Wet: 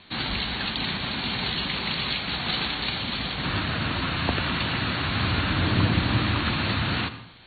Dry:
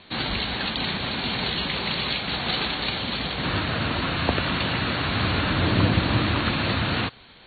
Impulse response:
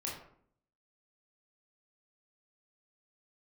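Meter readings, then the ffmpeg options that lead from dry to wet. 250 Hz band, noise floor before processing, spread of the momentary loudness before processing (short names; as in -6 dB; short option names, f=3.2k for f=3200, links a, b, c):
-2.0 dB, -50 dBFS, 5 LU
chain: -filter_complex "[0:a]equalizer=f=510:t=o:w=1.1:g=-5,asplit=2[a][b];[1:a]atrim=start_sample=2205,adelay=84[c];[b][c]afir=irnorm=-1:irlink=0,volume=-14dB[d];[a][d]amix=inputs=2:normalize=0,volume=-1dB"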